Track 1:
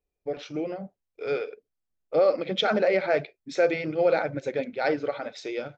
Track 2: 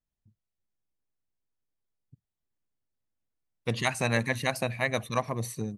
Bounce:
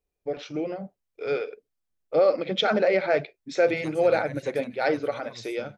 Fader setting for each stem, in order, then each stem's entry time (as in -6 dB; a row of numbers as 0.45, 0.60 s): +1.0, -16.0 dB; 0.00, 0.00 s